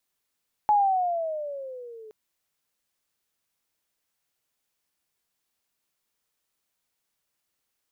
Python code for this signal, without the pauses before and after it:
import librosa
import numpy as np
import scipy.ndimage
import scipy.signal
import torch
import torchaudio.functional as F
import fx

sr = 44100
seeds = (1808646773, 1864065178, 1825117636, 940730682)

y = fx.riser_tone(sr, length_s=1.42, level_db=-16, wave='sine', hz=852.0, rise_st=-12.0, swell_db=-26.0)